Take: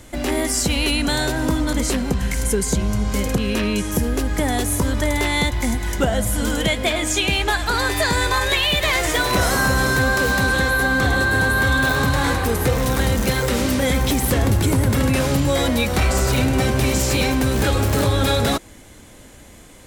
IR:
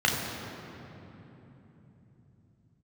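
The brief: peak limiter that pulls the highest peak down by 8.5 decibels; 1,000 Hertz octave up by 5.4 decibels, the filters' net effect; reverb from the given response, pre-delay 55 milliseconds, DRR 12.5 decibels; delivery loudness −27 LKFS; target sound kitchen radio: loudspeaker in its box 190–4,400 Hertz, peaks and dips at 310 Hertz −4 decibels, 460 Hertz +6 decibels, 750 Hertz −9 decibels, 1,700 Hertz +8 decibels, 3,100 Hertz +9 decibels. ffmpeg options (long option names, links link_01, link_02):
-filter_complex "[0:a]equalizer=frequency=1000:width_type=o:gain=8.5,alimiter=limit=-12.5dB:level=0:latency=1,asplit=2[link_01][link_02];[1:a]atrim=start_sample=2205,adelay=55[link_03];[link_02][link_03]afir=irnorm=-1:irlink=0,volume=-27.5dB[link_04];[link_01][link_04]amix=inputs=2:normalize=0,highpass=190,equalizer=frequency=310:width_type=q:width=4:gain=-4,equalizer=frequency=460:width_type=q:width=4:gain=6,equalizer=frequency=750:width_type=q:width=4:gain=-9,equalizer=frequency=1700:width_type=q:width=4:gain=8,equalizer=frequency=3100:width_type=q:width=4:gain=9,lowpass=frequency=4400:width=0.5412,lowpass=frequency=4400:width=1.3066,volume=-7.5dB"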